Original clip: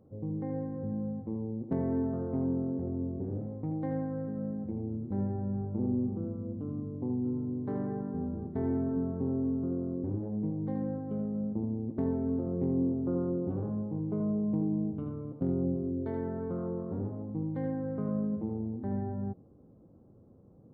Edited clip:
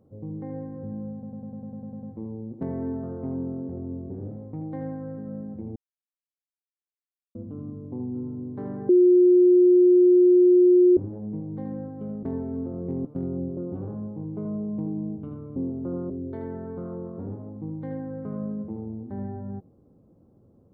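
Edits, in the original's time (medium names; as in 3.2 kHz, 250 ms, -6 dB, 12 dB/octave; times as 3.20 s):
1.13 s: stutter 0.10 s, 10 plays
4.86–6.45 s: mute
7.99–10.07 s: bleep 359 Hz -12.5 dBFS
11.33–11.96 s: delete
12.78–13.32 s: swap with 15.31–15.83 s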